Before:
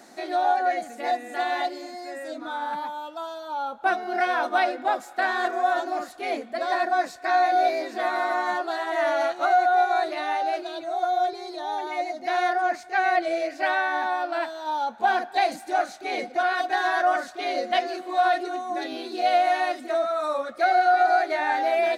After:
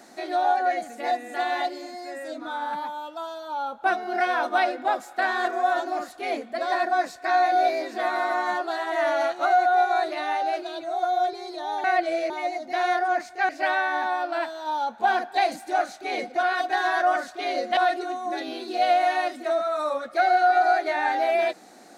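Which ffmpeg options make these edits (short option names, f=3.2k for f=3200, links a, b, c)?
-filter_complex "[0:a]asplit=5[a][b][c][d][e];[a]atrim=end=11.842[f];[b]atrim=start=13.028:end=13.492[g];[c]atrim=start=11.838:end=13.032[h];[d]atrim=start=13.488:end=17.772[i];[e]atrim=start=18.208[j];[f][g]acrossfade=d=0.004:c1=hsin:c2=hsin[k];[k][h]acrossfade=d=0.004:c1=hsin:c2=hsin[l];[l][i]acrossfade=d=0.004:c1=hsin:c2=hsin[m];[m][j]acrossfade=d=0.004:c1=hsin:c2=hsin"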